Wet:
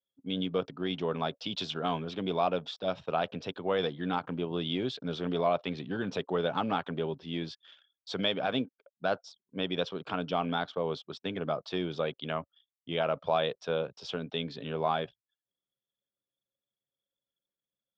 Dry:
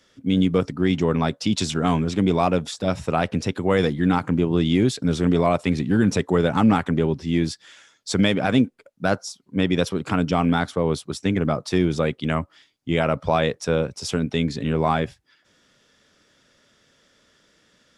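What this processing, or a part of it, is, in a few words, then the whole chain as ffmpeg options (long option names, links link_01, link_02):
kitchen radio: -af "highpass=210,equalizer=frequency=220:width_type=q:width=4:gain=-8,equalizer=frequency=320:width_type=q:width=4:gain=-6,equalizer=frequency=660:width_type=q:width=4:gain=3,equalizer=frequency=2000:width_type=q:width=4:gain=-7,equalizer=frequency=3300:width_type=q:width=4:gain=6,lowpass=frequency=4400:width=0.5412,lowpass=frequency=4400:width=1.3066,anlmdn=0.0251,volume=-8dB"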